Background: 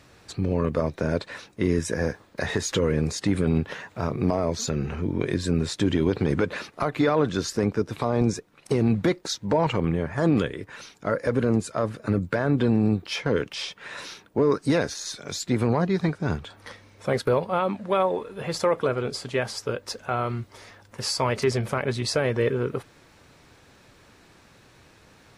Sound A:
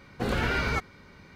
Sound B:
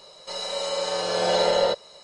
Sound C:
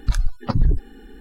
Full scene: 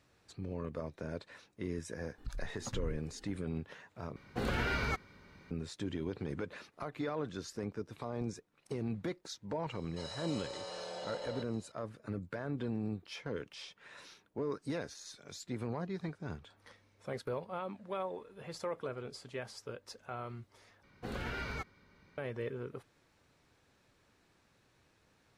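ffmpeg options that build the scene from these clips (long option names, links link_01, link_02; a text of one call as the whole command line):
ffmpeg -i bed.wav -i cue0.wav -i cue1.wav -i cue2.wav -filter_complex "[1:a]asplit=2[link_01][link_02];[0:a]volume=-16dB[link_03];[3:a]alimiter=limit=-15.5dB:level=0:latency=1:release=221[link_04];[2:a]acompressor=threshold=-25dB:ratio=6:attack=3.2:release=140:knee=1:detection=peak[link_05];[link_03]asplit=3[link_06][link_07][link_08];[link_06]atrim=end=4.164[link_09];[link_01]atrim=end=1.35,asetpts=PTS-STARTPTS,volume=-6.5dB[link_10];[link_07]atrim=start=5.506:end=20.834[link_11];[link_02]atrim=end=1.35,asetpts=PTS-STARTPTS,volume=-12.5dB[link_12];[link_08]atrim=start=22.176[link_13];[link_04]atrim=end=1.2,asetpts=PTS-STARTPTS,volume=-16.5dB,afade=type=in:duration=0.004:curve=hsin,afade=type=out:start_time=1.196:duration=0.004:curve=hsin,adelay=2180[link_14];[link_05]atrim=end=2.03,asetpts=PTS-STARTPTS,volume=-14.5dB,afade=type=in:duration=0.004:curve=hsin,afade=type=out:start_time=2.026:duration=0.004:curve=hsin,adelay=9690[link_15];[link_09][link_10]acrossfade=duration=0.004:curve1=hsin:curve2=hsin[link_16];[link_16][link_11]acrossfade=duration=0.004:curve1=hsin:curve2=hsin[link_17];[link_17][link_12]acrossfade=duration=0.004:curve1=hsin:curve2=hsin[link_18];[link_18][link_13]acrossfade=duration=0.004:curve1=hsin:curve2=hsin[link_19];[link_19][link_14][link_15]amix=inputs=3:normalize=0" out.wav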